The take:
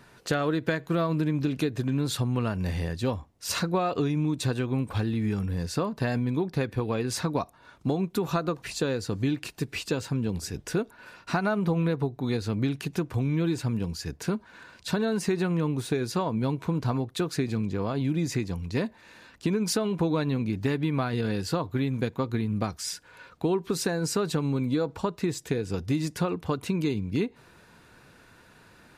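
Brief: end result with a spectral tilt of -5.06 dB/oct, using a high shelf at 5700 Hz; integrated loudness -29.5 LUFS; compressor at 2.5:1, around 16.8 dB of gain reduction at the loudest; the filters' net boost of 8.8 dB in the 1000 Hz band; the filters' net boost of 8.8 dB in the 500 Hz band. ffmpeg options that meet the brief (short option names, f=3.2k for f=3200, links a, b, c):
-af "equalizer=f=500:t=o:g=9,equalizer=f=1k:t=o:g=8,highshelf=f=5.7k:g=8.5,acompressor=threshold=-42dB:ratio=2.5,volume=9dB"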